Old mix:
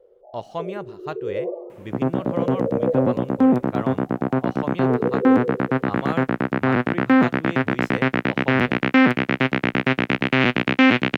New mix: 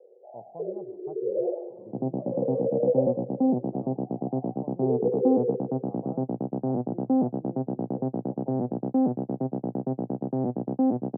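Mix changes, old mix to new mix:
speech -11.5 dB; second sound -6.5 dB; master: add Chebyshev band-pass 120–800 Hz, order 4

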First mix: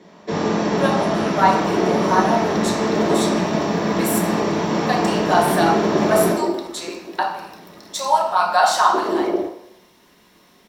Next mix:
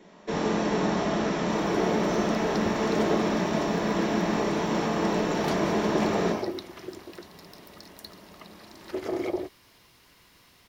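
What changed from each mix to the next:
speech: muted; first sound: send -6.5 dB; second sound: send off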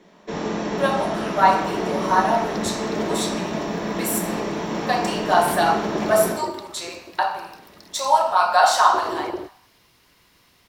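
speech: unmuted

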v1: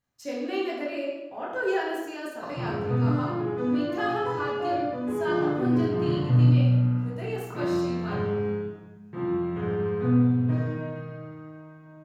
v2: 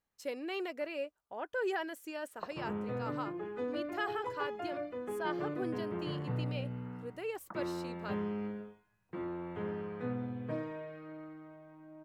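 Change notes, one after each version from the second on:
reverb: off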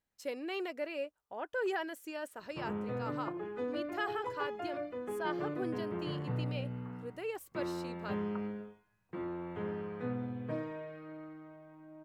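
first sound: entry +0.85 s

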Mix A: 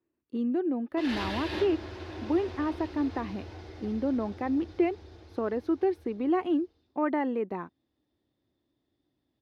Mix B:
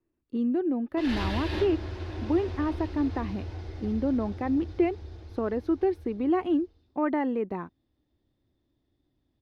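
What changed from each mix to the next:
master: remove HPF 210 Hz 6 dB/oct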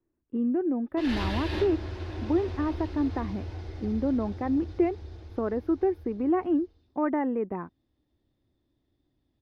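speech: add Butterworth band-stop 5400 Hz, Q 0.54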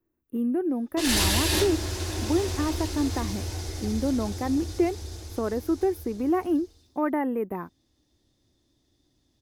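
background +4.0 dB; master: remove air absorption 340 m

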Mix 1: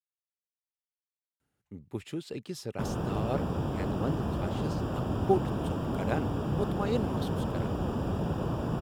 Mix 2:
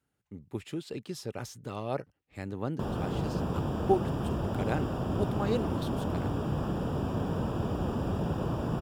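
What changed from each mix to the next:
speech: entry -1.40 s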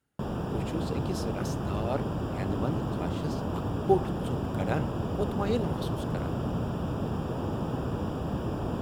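background: entry -2.60 s; reverb: on, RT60 1.0 s

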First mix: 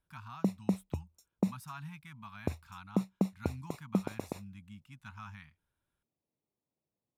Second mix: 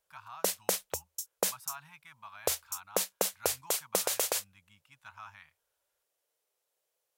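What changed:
background: remove running mean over 28 samples; master: add resonant low shelf 340 Hz -13 dB, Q 3

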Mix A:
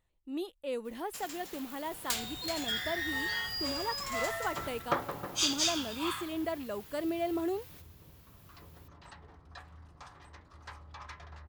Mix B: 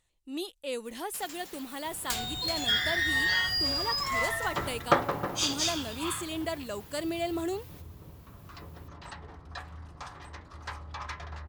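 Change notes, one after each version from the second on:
speech: add bell 7000 Hz +13.5 dB 2.5 oct; second sound +8.0 dB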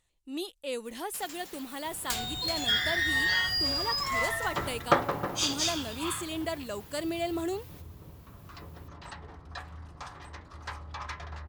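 none

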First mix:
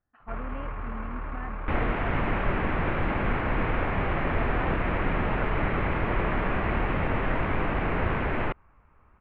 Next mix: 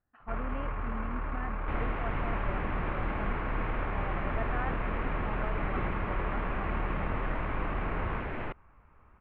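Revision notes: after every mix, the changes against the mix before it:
second sound -8.5 dB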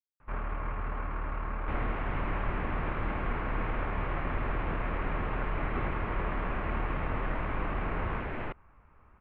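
speech: muted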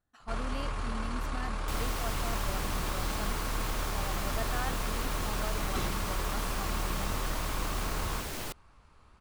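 speech: unmuted; second sound -3.5 dB; master: remove steep low-pass 2400 Hz 36 dB/oct

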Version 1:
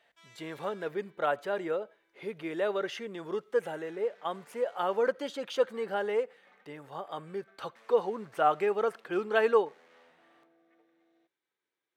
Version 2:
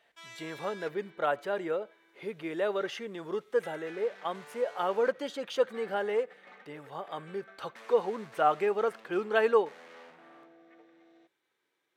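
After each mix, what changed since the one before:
background +9.5 dB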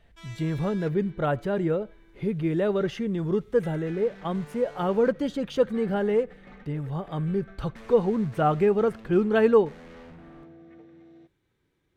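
master: remove HPF 580 Hz 12 dB/oct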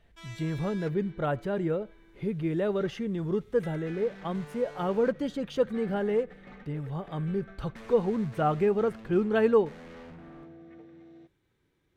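speech -3.5 dB

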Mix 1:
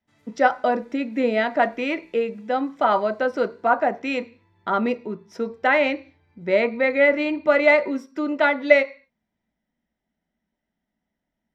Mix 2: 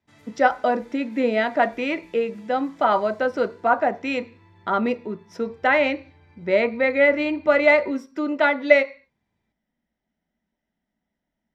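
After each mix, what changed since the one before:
background +9.0 dB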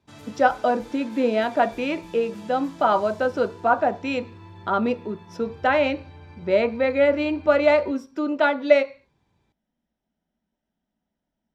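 background +10.0 dB; master: add bell 2000 Hz -10.5 dB 0.29 oct

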